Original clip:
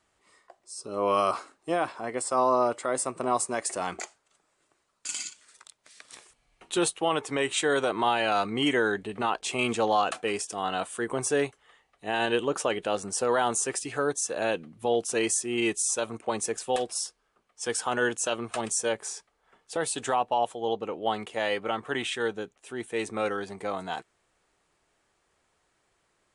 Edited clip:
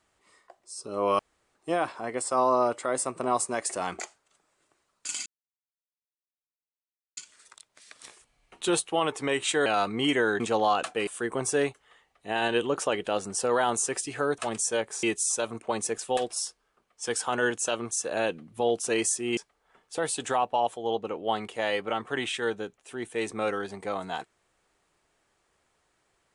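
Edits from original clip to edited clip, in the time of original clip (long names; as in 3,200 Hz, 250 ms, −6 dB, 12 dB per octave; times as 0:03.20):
0:01.19–0:01.55: fill with room tone
0:05.26: splice in silence 1.91 s
0:07.75–0:08.24: remove
0:08.98–0:09.68: remove
0:10.35–0:10.85: remove
0:14.16–0:15.62: swap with 0:18.50–0:19.15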